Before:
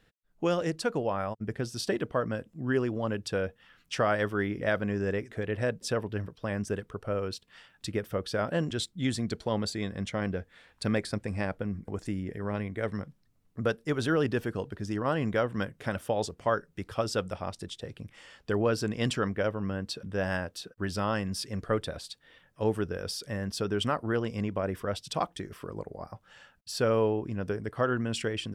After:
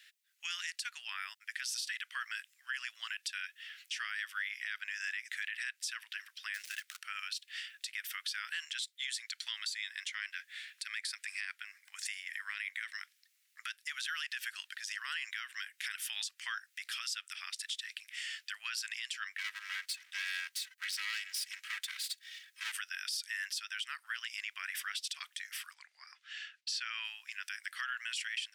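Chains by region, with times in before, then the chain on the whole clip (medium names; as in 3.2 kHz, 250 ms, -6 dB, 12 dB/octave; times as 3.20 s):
6.54–7.01 s: dead-time distortion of 0.085 ms + peaking EQ 1 kHz -10.5 dB 0.25 oct + de-hum 50.86 Hz, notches 12
19.38–22.72 s: comb filter that takes the minimum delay 3.1 ms + peaking EQ 500 Hz -14 dB 0.33 oct
25.74–27.05 s: low-pass 5.2 kHz + gate with hold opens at -53 dBFS, closes at -65 dBFS
whole clip: steep high-pass 1.8 kHz 36 dB/octave; compression 6:1, threshold -44 dBFS; peak limiter -39.5 dBFS; trim +12.5 dB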